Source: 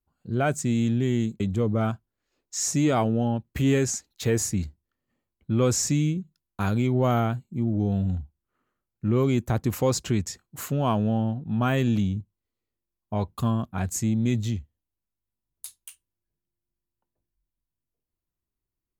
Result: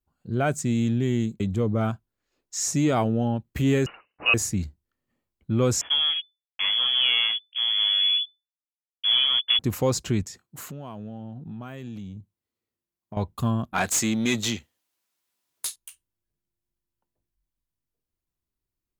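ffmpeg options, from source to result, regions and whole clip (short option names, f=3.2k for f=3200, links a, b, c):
-filter_complex "[0:a]asettb=1/sr,asplit=3[a][b][c];[a]atrim=end=3.864[d];[b]atrim=start=3.86:end=4.34,asetpts=PTS-STARTPTS,afade=t=in:d=0.004:c=qsin,afade=t=out:st=0.476:d=0.004:c=qsin,aemphasis=mode=production:type=bsi,acontrast=58,lowpass=f=2.6k:t=q:w=0.5098,lowpass=f=2.6k:t=q:w=0.6013,lowpass=f=2.6k:t=q:w=0.9,lowpass=f=2.6k:t=q:w=2.563,afreqshift=-3000[e];[c]atrim=start=4.336[f];[d][e]acrossfade=d=0.004:c1=hsin:c2=qsin[g];[g][f]acrossfade=d=0.004:c1=qsin:c2=hsin,asettb=1/sr,asplit=3[h][i][j];[h]atrim=end=5.814[k];[i]atrim=start=5.81:end=9.59,asetpts=PTS-STARTPTS,afade=t=in:d=0.004:c=qsin,afade=t=out:st=3.776:d=0.004:c=qsin,asubboost=boost=5:cutoff=92,acrusher=bits=4:mix=0:aa=0.5,lowpass=f=3k:t=q:w=0.5098,lowpass=f=3k:t=q:w=0.6013,lowpass=f=3k:t=q:w=0.9,lowpass=f=3k:t=q:w=2.563,afreqshift=-3500[l];[j]atrim=start=9.586[m];[k][l]acrossfade=d=0.004:c1=hsin:c2=qsin[n];[n][m]acrossfade=d=0.004:c1=qsin:c2=hsin,asettb=1/sr,asplit=3[o][p][q];[o]atrim=end=10.234[r];[p]atrim=start=10.23:end=13.17,asetpts=PTS-STARTPTS,afade=t=in:d=0.004:c=qsin,afade=t=out:st=2.936:d=0.004:c=qsin,highpass=94,acompressor=threshold=-35dB:ratio=5:attack=3.2:release=140:knee=1:detection=peak[s];[q]atrim=start=13.166[t];[r][s]acrossfade=d=0.004:c1=hsin:c2=qsin[u];[u][t]acrossfade=d=0.004:c1=qsin:c2=hsin,asettb=1/sr,asplit=3[v][w][x];[v]atrim=end=13.734[y];[w]atrim=start=13.73:end=15.76,asetpts=PTS-STARTPTS,afade=t=in:d=0.004:c=qsin,afade=t=out:st=2.026:d=0.004:c=qsin,highpass=f=250:p=1,highshelf=f=3.4k:g=7.5,asplit=2[z][aa];[aa]highpass=f=720:p=1,volume=20dB,asoftclip=type=tanh:threshold=-12dB[ab];[z][ab]amix=inputs=2:normalize=0,lowpass=f=4.5k:p=1,volume=-6dB[ac];[x]atrim=start=15.756[ad];[y][ac]acrossfade=d=0.004:c1=hsin:c2=qsin[ae];[ae][ad]acrossfade=d=0.004:c1=qsin:c2=hsin"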